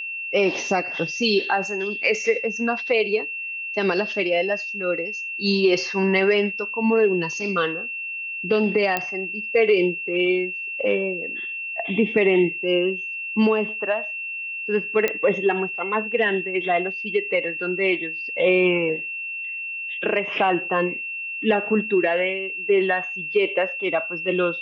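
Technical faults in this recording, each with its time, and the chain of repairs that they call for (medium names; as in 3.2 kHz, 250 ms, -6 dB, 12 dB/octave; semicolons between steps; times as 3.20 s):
whine 2.7 kHz -28 dBFS
8.97 s: pop -8 dBFS
15.08 s: pop -8 dBFS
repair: de-click; band-stop 2.7 kHz, Q 30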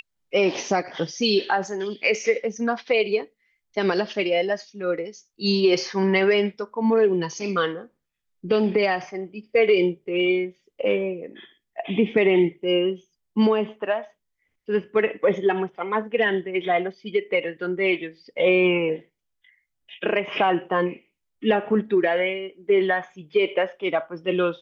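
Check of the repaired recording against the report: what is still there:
nothing left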